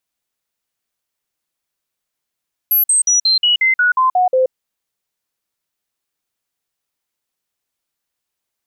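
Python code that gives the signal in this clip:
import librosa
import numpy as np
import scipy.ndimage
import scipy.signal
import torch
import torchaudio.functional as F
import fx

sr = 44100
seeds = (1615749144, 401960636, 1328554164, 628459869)

y = fx.stepped_sweep(sr, from_hz=11700.0, direction='down', per_octave=2, tones=10, dwell_s=0.13, gap_s=0.05, level_db=-10.0)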